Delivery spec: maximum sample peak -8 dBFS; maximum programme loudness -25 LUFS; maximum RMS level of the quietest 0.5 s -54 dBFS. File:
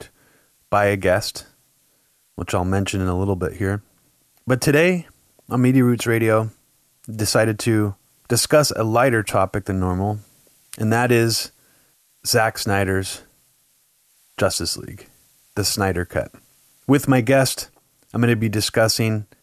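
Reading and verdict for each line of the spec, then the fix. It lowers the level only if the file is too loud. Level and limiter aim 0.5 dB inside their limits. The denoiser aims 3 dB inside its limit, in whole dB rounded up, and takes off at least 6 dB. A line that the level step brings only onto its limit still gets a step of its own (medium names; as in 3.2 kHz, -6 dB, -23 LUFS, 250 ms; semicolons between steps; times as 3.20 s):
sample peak -4.5 dBFS: fail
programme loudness -20.0 LUFS: fail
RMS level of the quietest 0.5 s -62 dBFS: pass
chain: trim -5.5 dB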